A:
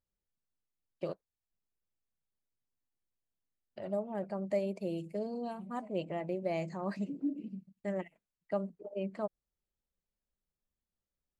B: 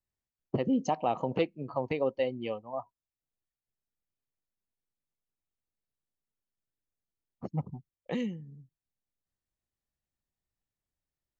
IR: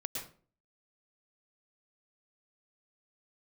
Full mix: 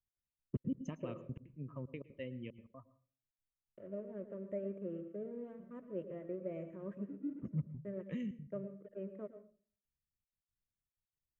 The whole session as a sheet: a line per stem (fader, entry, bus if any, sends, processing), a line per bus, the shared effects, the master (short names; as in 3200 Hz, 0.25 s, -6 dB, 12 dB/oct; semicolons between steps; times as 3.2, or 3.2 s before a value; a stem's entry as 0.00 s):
-1.5 dB, 0.00 s, send -6 dB, crossover distortion -50 dBFS; band-pass 510 Hz, Q 2
-12.0 dB, 0.00 s, send -14.5 dB, step gate "x.xxxxx." 186 bpm -60 dB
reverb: on, RT60 0.45 s, pre-delay 0.102 s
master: tone controls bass +9 dB, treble +1 dB; fixed phaser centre 1900 Hz, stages 4